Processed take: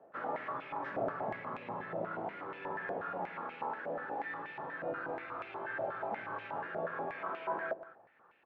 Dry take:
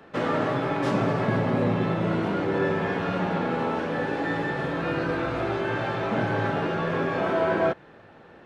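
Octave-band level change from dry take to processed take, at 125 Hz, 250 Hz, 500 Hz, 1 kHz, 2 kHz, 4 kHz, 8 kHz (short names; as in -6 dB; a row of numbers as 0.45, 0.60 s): -25.0 dB, -21.5 dB, -14.0 dB, -9.5 dB, -11.0 dB, -21.0 dB, n/a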